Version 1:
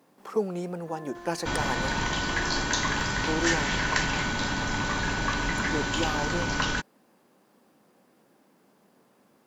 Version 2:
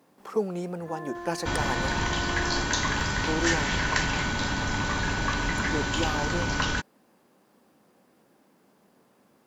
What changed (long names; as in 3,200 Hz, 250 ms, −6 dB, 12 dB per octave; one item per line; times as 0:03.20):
first sound +6.0 dB
master: add parametric band 73 Hz +7 dB 0.75 octaves